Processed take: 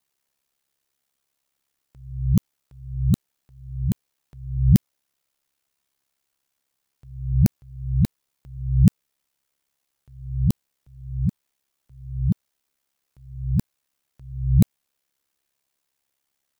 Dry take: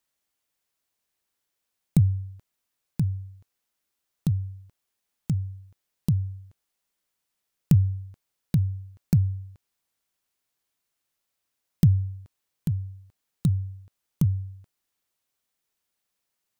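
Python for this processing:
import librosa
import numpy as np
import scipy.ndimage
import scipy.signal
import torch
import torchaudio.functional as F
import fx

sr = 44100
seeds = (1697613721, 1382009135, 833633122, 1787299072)

y = np.flip(x).copy()
y = y * np.sin(2.0 * np.pi * 34.0 * np.arange(len(y)) / sr)
y = y * librosa.db_to_amplitude(6.0)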